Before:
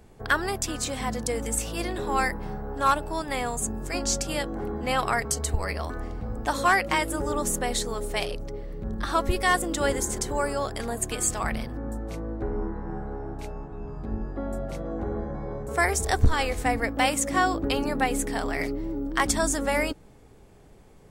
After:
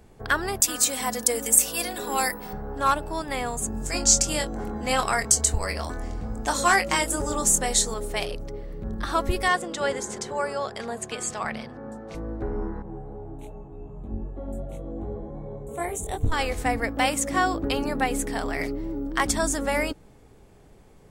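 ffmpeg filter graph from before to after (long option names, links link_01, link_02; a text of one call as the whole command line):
ffmpeg -i in.wav -filter_complex "[0:a]asettb=1/sr,asplit=3[link_01][link_02][link_03];[link_01]atrim=end=0.604[link_04];[link_02]atrim=start=0.6:end=2.53,asetpts=PTS-STARTPTS,afade=type=in:duration=0.004:curve=qsin,afade=type=out:start_time=1.926:duration=0.004:curve=qsin,aemphasis=mode=production:type=bsi,aecho=1:1:4.1:0.52,atrim=end_sample=85113[link_05];[link_03]atrim=start=2.526[link_06];[link_04][link_05]acrossfade=duration=0.004:curve1=hsin:curve2=qsin[link_07];[link_07][link_06]acrossfade=duration=0.004:curve1=qsin:curve2=hsin,asettb=1/sr,asplit=3[link_08][link_09][link_10];[link_08]atrim=end=3.724[link_11];[link_09]atrim=start=3.72:end=7.94,asetpts=PTS-STARTPTS,afade=type=in:duration=0.004:curve=qsin,afade=type=out:start_time=4.216:duration=0.004:curve=qsin,equalizer=frequency=7100:width=1.1:gain=10.5,asplit=2[link_12][link_13];[link_13]adelay=23,volume=-7.5dB[link_14];[link_12][link_14]amix=inputs=2:normalize=0,atrim=end_sample=186102[link_15];[link_10]atrim=start=7.936[link_16];[link_11][link_15]acrossfade=duration=0.004:curve1=hsin:curve2=qsin[link_17];[link_17][link_16]acrossfade=duration=0.004:curve1=qsin:curve2=hsin,asettb=1/sr,asplit=3[link_18][link_19][link_20];[link_18]atrim=end=9.484[link_21];[link_19]atrim=start=9.48:end=12.15,asetpts=PTS-STARTPTS,afade=type=in:duration=0.004:curve=qsin,afade=type=out:start_time=2.666:duration=0.004:curve=qsin,highpass=160,lowpass=6400,equalizer=frequency=300:width=6.6:gain=-14.5[link_22];[link_20]atrim=start=12.146[link_23];[link_21][link_22]acrossfade=duration=0.004:curve1=hsin:curve2=qsin[link_24];[link_24][link_23]acrossfade=duration=0.004:curve1=qsin:curve2=hsin,asettb=1/sr,asplit=3[link_25][link_26][link_27];[link_25]atrim=end=12.824[link_28];[link_26]atrim=start=12.82:end=16.32,asetpts=PTS-STARTPTS,afade=type=in:duration=0.004:curve=qsin,afade=type=out:start_time=3.496:duration=0.004:curve=qsin,asuperstop=centerf=5000:order=4:qfactor=1.7,flanger=delay=19.5:depth=2.6:speed=2.6,equalizer=frequency=1600:width=1.3:gain=-13[link_29];[link_27]atrim=start=16.316[link_30];[link_28][link_29]acrossfade=duration=0.004:curve1=hsin:curve2=qsin[link_31];[link_31][link_30]acrossfade=duration=0.004:curve1=qsin:curve2=hsin" out.wav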